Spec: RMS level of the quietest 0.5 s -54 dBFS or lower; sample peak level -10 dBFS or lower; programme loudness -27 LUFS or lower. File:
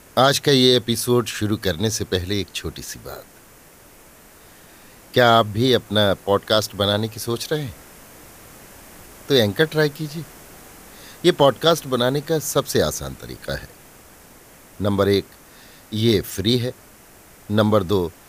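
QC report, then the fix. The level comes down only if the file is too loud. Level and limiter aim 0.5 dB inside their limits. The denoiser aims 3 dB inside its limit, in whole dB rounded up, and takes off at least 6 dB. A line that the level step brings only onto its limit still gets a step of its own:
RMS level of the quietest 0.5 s -48 dBFS: fail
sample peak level -2.5 dBFS: fail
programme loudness -20.0 LUFS: fail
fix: gain -7.5 dB; limiter -10.5 dBFS

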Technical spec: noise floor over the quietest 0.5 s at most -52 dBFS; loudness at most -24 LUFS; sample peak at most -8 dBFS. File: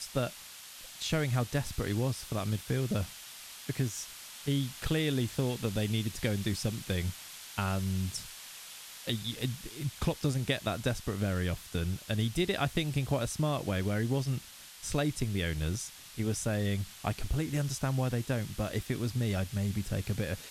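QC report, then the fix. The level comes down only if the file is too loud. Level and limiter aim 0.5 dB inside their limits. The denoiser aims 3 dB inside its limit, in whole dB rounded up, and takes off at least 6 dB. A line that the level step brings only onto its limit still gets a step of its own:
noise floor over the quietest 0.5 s -49 dBFS: fail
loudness -33.0 LUFS: OK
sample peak -13.0 dBFS: OK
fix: denoiser 6 dB, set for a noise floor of -49 dBFS

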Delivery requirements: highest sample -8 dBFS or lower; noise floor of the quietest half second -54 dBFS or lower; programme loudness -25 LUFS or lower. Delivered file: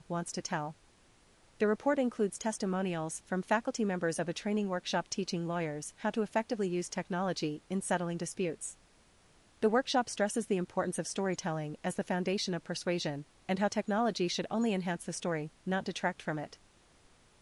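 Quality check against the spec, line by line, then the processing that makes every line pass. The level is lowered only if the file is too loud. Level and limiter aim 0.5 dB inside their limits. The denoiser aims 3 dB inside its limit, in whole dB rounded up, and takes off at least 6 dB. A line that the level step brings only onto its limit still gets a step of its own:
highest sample -16.5 dBFS: OK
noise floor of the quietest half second -64 dBFS: OK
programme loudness -34.0 LUFS: OK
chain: none

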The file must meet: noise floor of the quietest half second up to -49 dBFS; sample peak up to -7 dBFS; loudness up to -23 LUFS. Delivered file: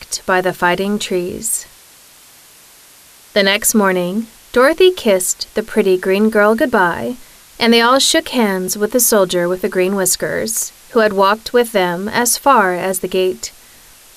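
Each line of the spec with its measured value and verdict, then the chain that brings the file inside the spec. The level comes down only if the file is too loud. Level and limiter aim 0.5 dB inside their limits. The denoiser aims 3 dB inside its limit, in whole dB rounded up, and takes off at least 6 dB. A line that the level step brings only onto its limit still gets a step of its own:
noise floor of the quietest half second -44 dBFS: fail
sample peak -1.5 dBFS: fail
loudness -14.5 LUFS: fail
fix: gain -9 dB

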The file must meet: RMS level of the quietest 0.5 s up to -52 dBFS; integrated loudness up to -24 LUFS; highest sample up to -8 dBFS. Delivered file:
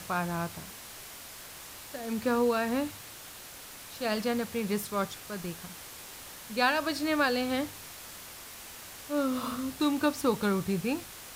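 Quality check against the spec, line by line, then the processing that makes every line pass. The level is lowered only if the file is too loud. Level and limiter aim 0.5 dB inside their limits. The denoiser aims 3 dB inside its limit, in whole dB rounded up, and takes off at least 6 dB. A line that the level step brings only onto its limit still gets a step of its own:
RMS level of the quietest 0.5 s -46 dBFS: fail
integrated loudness -30.5 LUFS: OK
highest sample -12.5 dBFS: OK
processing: denoiser 9 dB, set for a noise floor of -46 dBFS

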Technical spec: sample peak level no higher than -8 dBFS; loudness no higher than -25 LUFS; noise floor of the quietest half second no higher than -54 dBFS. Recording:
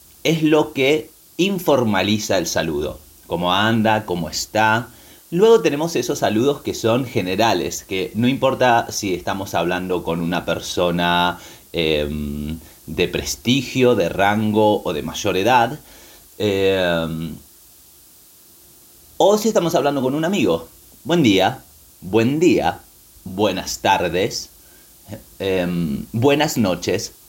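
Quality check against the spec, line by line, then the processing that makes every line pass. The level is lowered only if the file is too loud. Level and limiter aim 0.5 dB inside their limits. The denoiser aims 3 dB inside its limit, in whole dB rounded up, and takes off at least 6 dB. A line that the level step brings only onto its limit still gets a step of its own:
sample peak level -3.5 dBFS: fail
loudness -19.0 LUFS: fail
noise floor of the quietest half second -48 dBFS: fail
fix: gain -6.5 dB

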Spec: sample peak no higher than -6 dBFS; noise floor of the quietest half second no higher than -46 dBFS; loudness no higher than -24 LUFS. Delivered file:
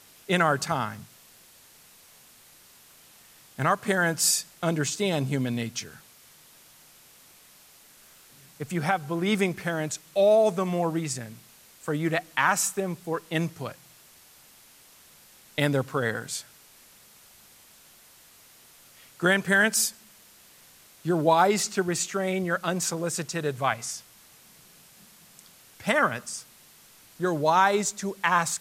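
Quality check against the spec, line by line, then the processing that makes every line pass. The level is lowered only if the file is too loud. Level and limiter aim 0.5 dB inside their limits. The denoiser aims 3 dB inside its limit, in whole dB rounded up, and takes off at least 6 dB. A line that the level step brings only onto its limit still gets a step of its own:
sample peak -8.5 dBFS: OK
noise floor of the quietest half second -54 dBFS: OK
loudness -26.0 LUFS: OK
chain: none

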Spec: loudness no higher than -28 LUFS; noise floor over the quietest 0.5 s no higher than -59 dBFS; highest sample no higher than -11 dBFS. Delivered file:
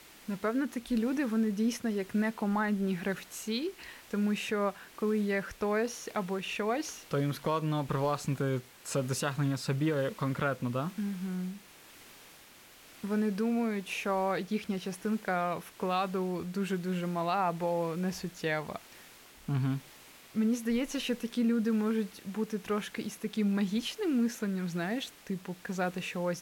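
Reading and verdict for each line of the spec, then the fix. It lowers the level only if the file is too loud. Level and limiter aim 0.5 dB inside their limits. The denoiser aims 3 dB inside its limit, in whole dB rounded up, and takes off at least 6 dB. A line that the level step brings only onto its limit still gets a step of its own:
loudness -32.5 LUFS: OK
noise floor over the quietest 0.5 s -55 dBFS: fail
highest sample -19.0 dBFS: OK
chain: denoiser 7 dB, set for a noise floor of -55 dBFS

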